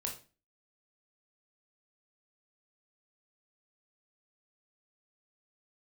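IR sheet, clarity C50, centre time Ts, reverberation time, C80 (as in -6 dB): 8.5 dB, 21 ms, 0.35 s, 14.5 dB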